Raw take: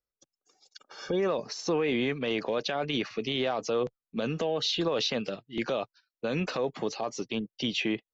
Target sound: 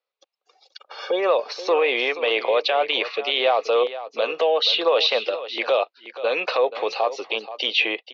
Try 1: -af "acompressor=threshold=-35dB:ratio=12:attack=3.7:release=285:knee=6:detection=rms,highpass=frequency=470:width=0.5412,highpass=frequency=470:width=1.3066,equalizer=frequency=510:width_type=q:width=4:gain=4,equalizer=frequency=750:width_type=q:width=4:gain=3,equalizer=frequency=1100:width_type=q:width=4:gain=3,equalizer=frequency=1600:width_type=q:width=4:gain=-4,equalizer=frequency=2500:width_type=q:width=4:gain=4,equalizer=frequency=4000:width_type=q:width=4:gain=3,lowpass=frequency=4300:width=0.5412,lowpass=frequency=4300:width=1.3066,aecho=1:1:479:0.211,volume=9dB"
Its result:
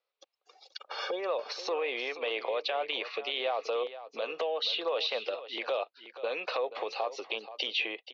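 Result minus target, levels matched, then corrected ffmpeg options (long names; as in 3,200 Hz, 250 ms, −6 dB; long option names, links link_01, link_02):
downward compressor: peak gain reduction +13 dB
-af "highpass=frequency=470:width=0.5412,highpass=frequency=470:width=1.3066,equalizer=frequency=510:width_type=q:width=4:gain=4,equalizer=frequency=750:width_type=q:width=4:gain=3,equalizer=frequency=1100:width_type=q:width=4:gain=3,equalizer=frequency=1600:width_type=q:width=4:gain=-4,equalizer=frequency=2500:width_type=q:width=4:gain=4,equalizer=frequency=4000:width_type=q:width=4:gain=3,lowpass=frequency=4300:width=0.5412,lowpass=frequency=4300:width=1.3066,aecho=1:1:479:0.211,volume=9dB"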